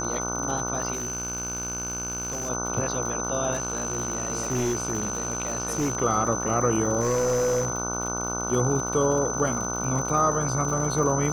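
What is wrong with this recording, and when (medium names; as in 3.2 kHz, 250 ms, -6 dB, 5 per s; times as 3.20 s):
buzz 60 Hz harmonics 25 -32 dBFS
crackle 110 per s -32 dBFS
whine 6.1 kHz -30 dBFS
0.92–2.50 s: clipped -26.5 dBFS
3.53–5.97 s: clipped -21.5 dBFS
7.00–7.70 s: clipped -20 dBFS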